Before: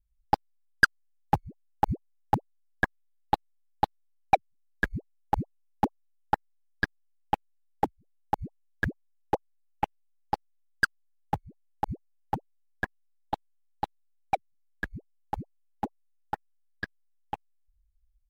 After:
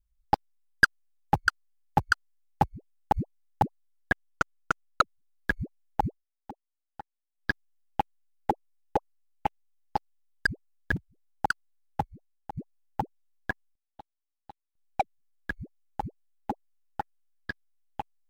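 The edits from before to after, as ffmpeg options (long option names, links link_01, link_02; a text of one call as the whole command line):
ffmpeg -i in.wav -filter_complex "[0:a]asplit=14[link_01][link_02][link_03][link_04][link_05][link_06][link_07][link_08][link_09][link_10][link_11][link_12][link_13][link_14];[link_01]atrim=end=1.482[link_15];[link_02]atrim=start=0.838:end=1.482[link_16];[link_03]atrim=start=0.838:end=2.844[link_17];[link_04]atrim=start=2.84:end=4.35,asetpts=PTS-STARTPTS,asetrate=74529,aresample=44100[link_18];[link_05]atrim=start=4.346:end=5.58,asetpts=PTS-STARTPTS,afade=type=out:start_time=1.074:duration=0.16:silence=0.133352[link_19];[link_06]atrim=start=5.58:end=6.68,asetpts=PTS-STARTPTS,volume=-17.5dB[link_20];[link_07]atrim=start=6.68:end=7.852,asetpts=PTS-STARTPTS,afade=type=in:duration=0.16:silence=0.133352[link_21];[link_08]atrim=start=8.888:end=10.842[link_22];[link_09]atrim=start=8.388:end=8.892[link_23];[link_10]atrim=start=7.848:end=8.392[link_24];[link_11]atrim=start=10.838:end=11.91,asetpts=PTS-STARTPTS,afade=type=out:start_time=0.632:duration=0.44:silence=0.188365[link_25];[link_12]atrim=start=11.91:end=13.09,asetpts=PTS-STARTPTS,afade=type=in:duration=0.004:curve=hsin:silence=0.188365,afade=type=out:start_time=0.93:duration=0.25:curve=log:silence=0.133352[link_26];[link_13]atrim=start=13.09:end=14.09,asetpts=PTS-STARTPTS,volume=-17.5dB[link_27];[link_14]atrim=start=14.09,asetpts=PTS-STARTPTS,afade=type=in:duration=0.25:curve=log:silence=0.133352[link_28];[link_15][link_16]acrossfade=duration=0.004:curve1=hsin:curve2=hsin[link_29];[link_29][link_17]acrossfade=duration=0.004:curve1=hsin:curve2=hsin[link_30];[link_30][link_18]acrossfade=duration=0.004:curve1=hsin:curve2=hsin[link_31];[link_19][link_20][link_21]concat=n=3:v=0:a=1[link_32];[link_31][link_32]acrossfade=duration=0.004:curve1=hsin:curve2=hsin[link_33];[link_33][link_22]acrossfade=duration=0.004:curve1=hsin:curve2=hsin[link_34];[link_34][link_23]acrossfade=duration=0.004:curve1=hsin:curve2=hsin[link_35];[link_35][link_24]acrossfade=duration=0.004:curve1=hsin:curve2=hsin[link_36];[link_25][link_26][link_27][link_28]concat=n=4:v=0:a=1[link_37];[link_36][link_37]acrossfade=duration=0.004:curve1=hsin:curve2=hsin" out.wav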